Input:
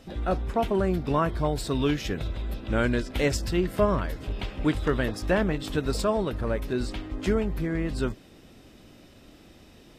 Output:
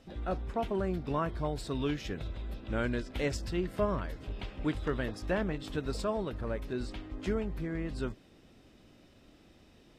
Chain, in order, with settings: treble shelf 11 kHz -10.5 dB; trim -7.5 dB

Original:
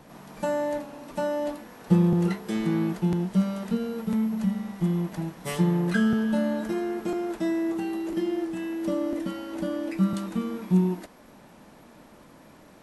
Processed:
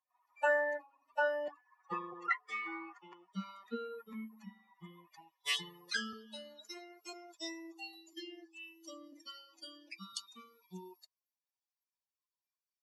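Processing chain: expander on every frequency bin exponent 3; band-pass sweep 1.7 kHz -> 5 kHz, 4.83–5.85 s; 1.48–3.33 s: cabinet simulation 450–7900 Hz, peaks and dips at 580 Hz -9 dB, 1.1 kHz +7 dB, 3.9 kHz -8 dB; trim +13.5 dB

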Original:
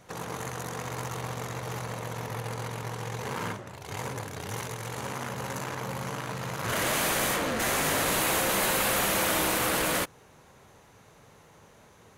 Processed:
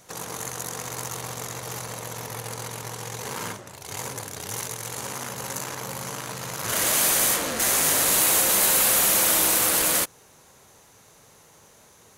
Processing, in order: tone controls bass -3 dB, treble +11 dB

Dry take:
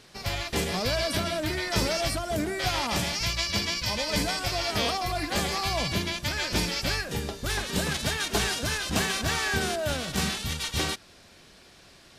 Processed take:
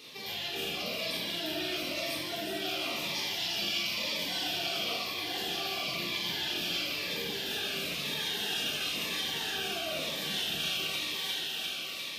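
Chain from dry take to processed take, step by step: rattle on loud lows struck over -29 dBFS, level -24 dBFS; band-stop 7.6 kHz, Q 21; reverse; compression, threshold -36 dBFS, peak gain reduction 14.5 dB; reverse; high-order bell 6.7 kHz -12.5 dB; thinning echo 351 ms, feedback 78%, high-pass 530 Hz, level -6.5 dB; peak limiter -34 dBFS, peak gain reduction 8.5 dB; high-pass 260 Hz 12 dB/octave; resonant high shelf 2.5 kHz +10 dB, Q 1.5; simulated room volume 960 m³, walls mixed, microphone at 3.8 m; Shepard-style phaser falling 1 Hz

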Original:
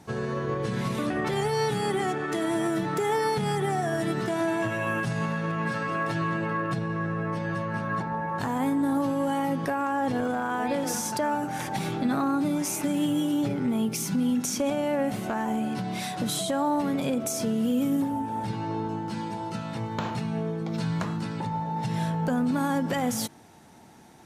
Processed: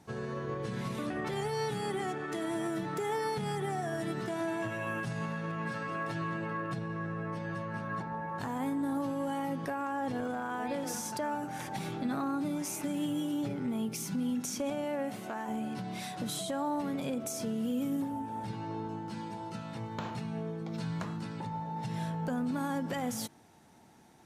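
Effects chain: 14.84–15.47 s: high-pass 130 Hz -> 350 Hz 6 dB/octave; trim -7.5 dB

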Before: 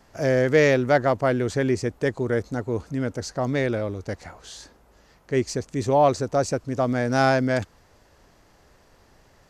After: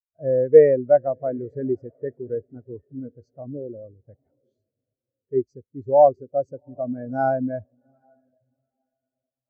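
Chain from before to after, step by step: 3.41–4.00 s: Chebyshev low-pass 1.3 kHz, order 4; on a send: echo that smears into a reverb 771 ms, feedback 47%, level -14.5 dB; on the sum: spectral contrast expander 2.5:1; trim +4 dB

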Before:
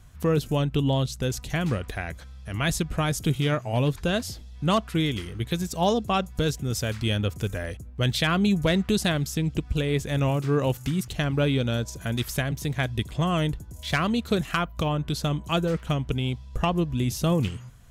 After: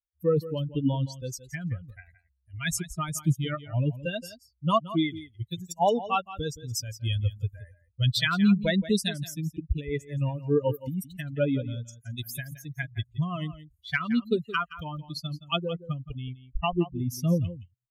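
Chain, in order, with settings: expander on every frequency bin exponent 3; on a send: delay 171 ms -15 dB; on the sum: trim +5 dB

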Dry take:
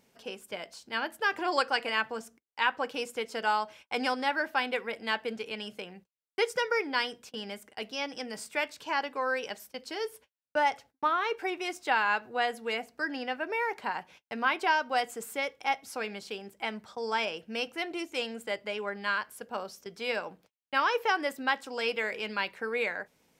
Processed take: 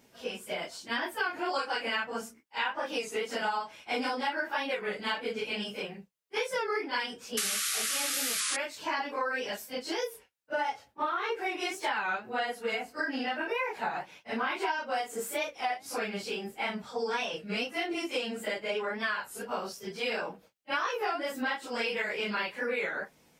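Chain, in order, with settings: phase randomisation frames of 100 ms; painted sound noise, 7.37–8.57 s, 1.1–12 kHz -28 dBFS; compression 6:1, threshold -33 dBFS, peak gain reduction 13.5 dB; warped record 33 1/3 rpm, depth 160 cents; trim +4.5 dB

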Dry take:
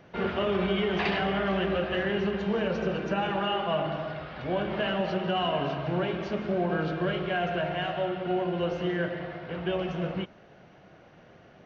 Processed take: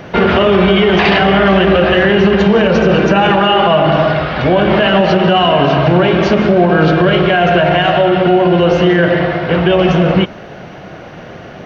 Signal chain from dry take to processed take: loudness maximiser +23.5 dB; trim -1 dB

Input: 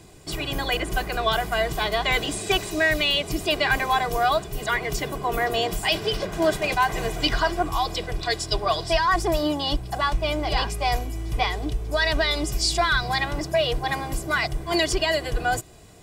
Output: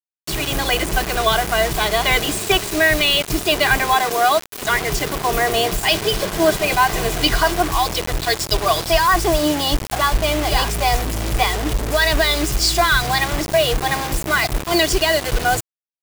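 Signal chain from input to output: 3.94–4.63 s: high-pass 210 Hz 24 dB/octave; bit crusher 5-bit; trim +5.5 dB

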